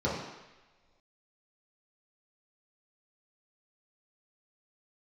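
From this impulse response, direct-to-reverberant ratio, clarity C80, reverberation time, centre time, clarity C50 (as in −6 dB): −8.0 dB, 5.0 dB, non-exponential decay, 59 ms, 2.0 dB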